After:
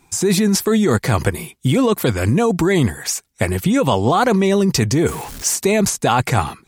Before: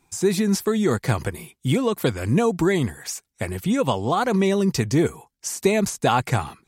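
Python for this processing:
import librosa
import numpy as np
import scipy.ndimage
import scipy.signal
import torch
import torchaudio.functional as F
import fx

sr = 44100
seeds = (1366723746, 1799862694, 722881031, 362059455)

p1 = fx.zero_step(x, sr, step_db=-35.0, at=(5.08, 5.56))
p2 = fx.over_compress(p1, sr, threshold_db=-22.0, ratio=-0.5)
y = p1 + (p2 * librosa.db_to_amplitude(2.0))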